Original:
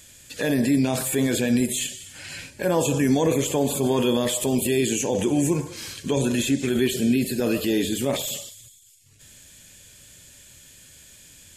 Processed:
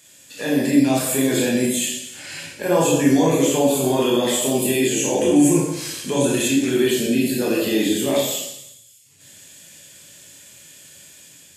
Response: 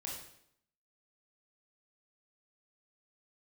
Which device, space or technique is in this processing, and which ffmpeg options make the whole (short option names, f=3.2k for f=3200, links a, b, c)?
far laptop microphone: -filter_complex "[1:a]atrim=start_sample=2205[a];[0:a][a]afir=irnorm=-1:irlink=0,highpass=180,dynaudnorm=f=230:g=5:m=3.5dB,asettb=1/sr,asplit=3[b][c][d];[b]atrim=end=5.364[e];[c]atrim=start=5.36:end=6.48,asetpts=PTS-STARTPTS,afade=t=in:d=0.004:c=qsin,afade=t=out:st=1.116:d=0.004:c=qsin,equalizer=f=9.7k:w=1.2:g=5.5[f];[d]atrim=start=6.476[g];[e][f]acrossfade=d=0.004:c1=hsin:c2=qsin[h];[h][g]acrossfade=d=0.004:c1=qsin:c2=hsin,volume=2dB"